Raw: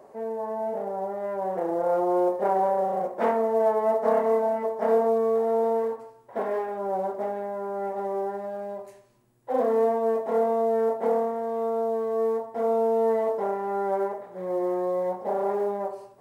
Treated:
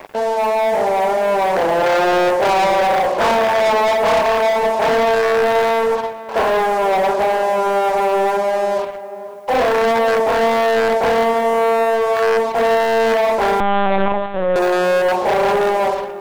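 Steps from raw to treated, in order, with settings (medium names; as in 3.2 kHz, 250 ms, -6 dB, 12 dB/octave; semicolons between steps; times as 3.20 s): rattle on loud lows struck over -36 dBFS, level -16 dBFS; Chebyshev low-pass 1.7 kHz, order 5; tilt EQ +4 dB/octave; de-hum 111.6 Hz, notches 5; waveshaping leveller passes 5; in parallel at +2 dB: level held to a coarse grid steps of 15 dB; on the sum: word length cut 10-bit, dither triangular; on a send: tape echo 491 ms, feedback 60%, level -10.5 dB, low-pass 1 kHz; 13.60–14.56 s: on the sum: LPC vocoder at 8 kHz pitch kept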